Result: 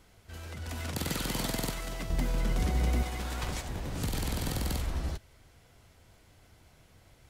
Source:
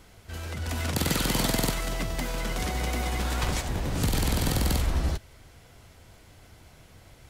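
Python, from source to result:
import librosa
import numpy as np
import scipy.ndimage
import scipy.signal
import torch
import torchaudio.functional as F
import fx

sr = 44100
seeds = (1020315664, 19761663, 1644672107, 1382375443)

y = fx.low_shelf(x, sr, hz=380.0, db=10.5, at=(2.1, 3.03))
y = y * librosa.db_to_amplitude(-7.0)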